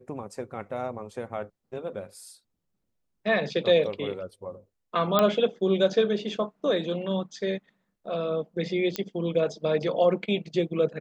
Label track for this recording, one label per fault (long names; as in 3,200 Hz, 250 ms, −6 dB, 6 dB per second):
5.190000	5.190000	click −8 dBFS
8.960000	8.960000	click −12 dBFS